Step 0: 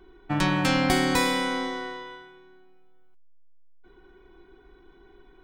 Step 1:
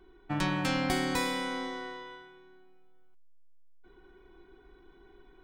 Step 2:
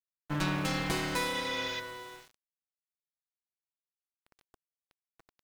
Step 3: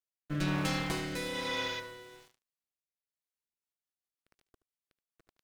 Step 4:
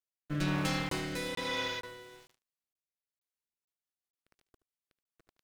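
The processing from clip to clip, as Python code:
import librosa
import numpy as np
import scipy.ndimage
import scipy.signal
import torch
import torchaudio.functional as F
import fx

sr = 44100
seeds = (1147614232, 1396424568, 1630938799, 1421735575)

y1 = fx.rider(x, sr, range_db=10, speed_s=2.0)
y1 = y1 * 10.0 ** (-8.5 / 20.0)
y2 = fx.lower_of_two(y1, sr, delay_ms=6.1)
y2 = fx.spec_repair(y2, sr, seeds[0], start_s=1.35, length_s=0.42, low_hz=1400.0, high_hz=6900.0, source='before')
y2 = np.where(np.abs(y2) >= 10.0 ** (-48.0 / 20.0), y2, 0.0)
y3 = fx.rotary_switch(y2, sr, hz=1.1, then_hz=7.5, switch_at_s=3.21)
y3 = y3 + 10.0 ** (-17.0 / 20.0) * np.pad(y3, (int(75 * sr / 1000.0), 0))[:len(y3)]
y4 = fx.buffer_crackle(y3, sr, first_s=0.89, period_s=0.46, block=1024, kind='zero')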